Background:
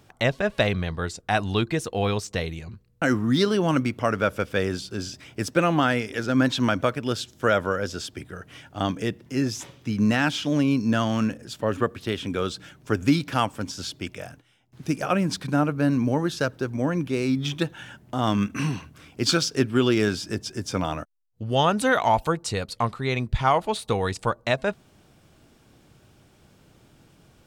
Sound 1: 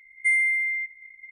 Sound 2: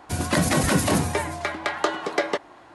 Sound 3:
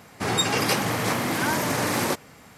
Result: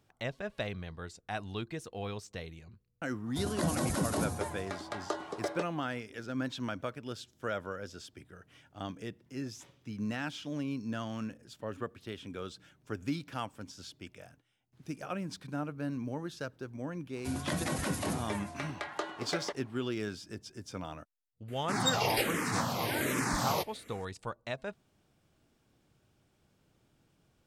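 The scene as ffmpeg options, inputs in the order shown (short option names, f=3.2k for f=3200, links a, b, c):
-filter_complex "[2:a]asplit=2[a][b];[0:a]volume=-14.5dB[c];[a]equalizer=f=2.3k:t=o:w=1.2:g=-9.5[d];[3:a]asplit=2[e][f];[f]afreqshift=-1.3[g];[e][g]amix=inputs=2:normalize=1[h];[d]atrim=end=2.74,asetpts=PTS-STARTPTS,volume=-10.5dB,afade=t=in:d=0.004:c=hsin,afade=t=out:st=2.736:d=0.004:c=hsin,adelay=3260[i];[b]atrim=end=2.74,asetpts=PTS-STARTPTS,volume=-13dB,afade=t=in:d=0.004:c=hsin,afade=t=out:st=2.736:d=0.004:c=hsin,adelay=17150[j];[h]atrim=end=2.57,asetpts=PTS-STARTPTS,volume=-4.5dB,afade=t=in:d=0.004:c=hsin,afade=t=out:st=2.566:d=0.004:c=hsin,adelay=947268S[k];[c][i][j][k]amix=inputs=4:normalize=0"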